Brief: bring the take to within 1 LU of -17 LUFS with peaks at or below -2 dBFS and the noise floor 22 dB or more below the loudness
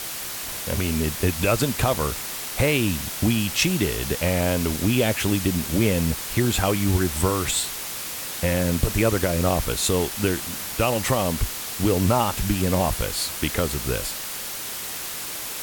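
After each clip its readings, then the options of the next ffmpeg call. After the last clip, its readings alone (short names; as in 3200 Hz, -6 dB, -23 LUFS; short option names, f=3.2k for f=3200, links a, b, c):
noise floor -32 dBFS; noise floor target -46 dBFS; loudness -23.5 LUFS; peak -7.0 dBFS; loudness target -17.0 LUFS
-> -af "afftdn=nr=14:nf=-32"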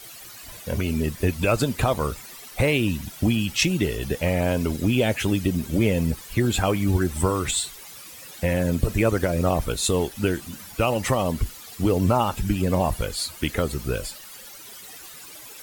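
noise floor -42 dBFS; noise floor target -46 dBFS
-> -af "afftdn=nr=6:nf=-42"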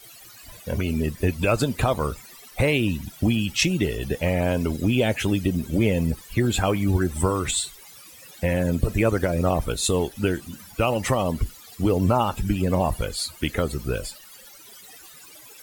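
noise floor -47 dBFS; loudness -24.0 LUFS; peak -8.0 dBFS; loudness target -17.0 LUFS
-> -af "volume=7dB,alimiter=limit=-2dB:level=0:latency=1"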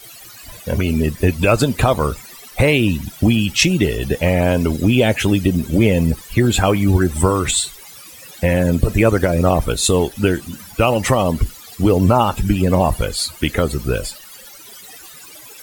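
loudness -17.0 LUFS; peak -2.0 dBFS; noise floor -40 dBFS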